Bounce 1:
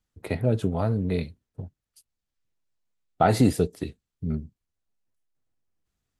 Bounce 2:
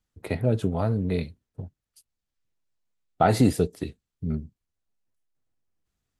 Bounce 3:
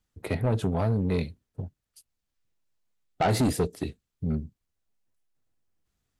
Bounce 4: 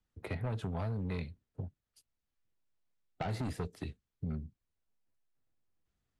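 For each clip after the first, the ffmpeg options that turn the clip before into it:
-af anull
-af "asoftclip=type=tanh:threshold=-21dB,volume=2dB"
-filter_complex "[0:a]lowpass=f=3.5k:p=1,acrossover=split=170|820|2400[a][b][c][d];[a]acompressor=threshold=-32dB:ratio=4[e];[b]acompressor=threshold=-40dB:ratio=4[f];[c]acompressor=threshold=-40dB:ratio=4[g];[d]acompressor=threshold=-48dB:ratio=4[h];[e][f][g][h]amix=inputs=4:normalize=0,volume=-4dB"

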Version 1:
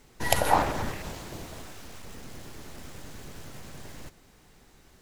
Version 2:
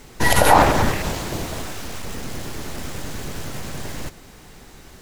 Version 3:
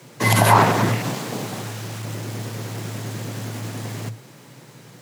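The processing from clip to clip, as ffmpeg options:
-af "alimiter=level_in=14dB:limit=-1dB:release=50:level=0:latency=1,volume=-1dB"
-af "afreqshift=110,volume=-1.5dB"

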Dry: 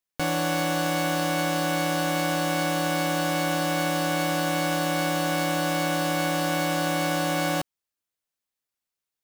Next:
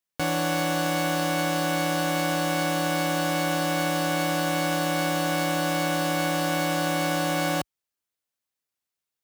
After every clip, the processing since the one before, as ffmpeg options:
-af "highpass=43"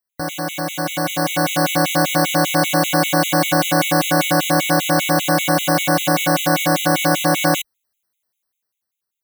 -af "highshelf=f=11k:g=7.5,dynaudnorm=f=220:g=11:m=11dB,afftfilt=real='re*gt(sin(2*PI*5.1*pts/sr)*(1-2*mod(floor(b*sr/1024/2000),2)),0)':imag='im*gt(sin(2*PI*5.1*pts/sr)*(1-2*mod(floor(b*sr/1024/2000),2)),0)':win_size=1024:overlap=0.75,volume=2.5dB"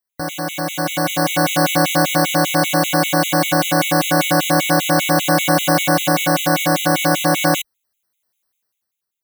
-af "dynaudnorm=f=150:g=9:m=6dB"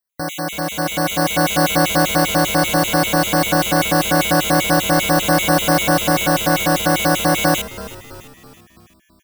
-filter_complex "[0:a]asplit=6[a][b][c][d][e][f];[b]adelay=330,afreqshift=-98,volume=-16dB[g];[c]adelay=660,afreqshift=-196,volume=-21.8dB[h];[d]adelay=990,afreqshift=-294,volume=-27.7dB[i];[e]adelay=1320,afreqshift=-392,volume=-33.5dB[j];[f]adelay=1650,afreqshift=-490,volume=-39.4dB[k];[a][g][h][i][j][k]amix=inputs=6:normalize=0"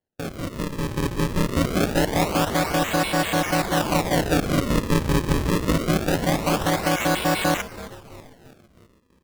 -af "acrusher=samples=35:mix=1:aa=0.000001:lfo=1:lforange=56:lforate=0.24,volume=-5.5dB"

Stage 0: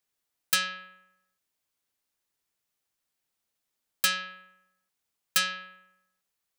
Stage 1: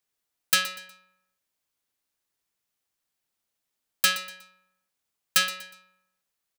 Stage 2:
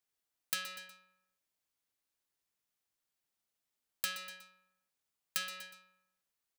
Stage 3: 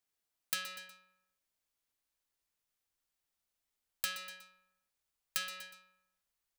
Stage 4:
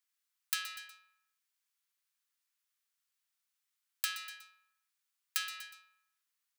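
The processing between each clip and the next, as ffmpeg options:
-filter_complex "[0:a]asplit=2[a][b];[b]acrusher=bits=3:mix=0:aa=0.5,volume=-7dB[c];[a][c]amix=inputs=2:normalize=0,aecho=1:1:121|242|363:0.168|0.0604|0.0218"
-af "acompressor=threshold=-28dB:ratio=6,volume=-5.5dB"
-af "asubboost=boost=3.5:cutoff=82"
-af "highpass=f=1.1k:w=0.5412,highpass=f=1.1k:w=1.3066,volume=1.5dB"

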